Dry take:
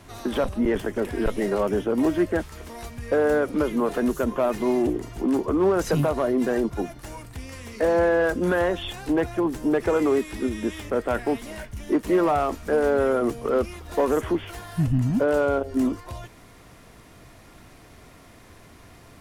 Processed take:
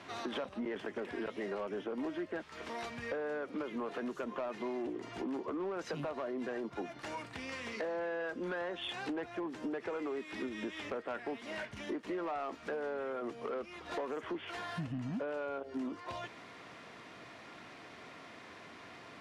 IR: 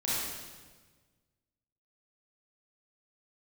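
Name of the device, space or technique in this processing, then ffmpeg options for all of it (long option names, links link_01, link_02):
AM radio: -af "highpass=190,lowpass=3700,tiltshelf=frequency=840:gain=-3.5,acompressor=threshold=-35dB:ratio=6,asoftclip=type=tanh:threshold=-29.5dB"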